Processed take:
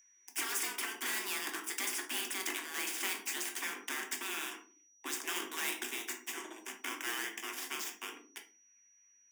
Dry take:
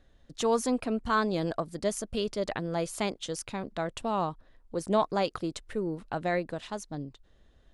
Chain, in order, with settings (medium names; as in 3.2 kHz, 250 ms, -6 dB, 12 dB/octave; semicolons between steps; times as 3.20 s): gliding tape speed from 107% -> 59%; high-pass 68 Hz 24 dB/octave; spectral gate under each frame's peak -15 dB weak; elliptic band-stop 170–1000 Hz, stop band 40 dB; treble shelf 9.3 kHz -9.5 dB; waveshaping leveller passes 5; frequency shift +200 Hz; flange 0.55 Hz, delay 1.6 ms, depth 5.6 ms, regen +70%; whistle 5.8 kHz -66 dBFS; static phaser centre 850 Hz, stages 8; reverberation RT60 0.35 s, pre-delay 5 ms, DRR 2.5 dB; spectrum-flattening compressor 2:1; trim +2 dB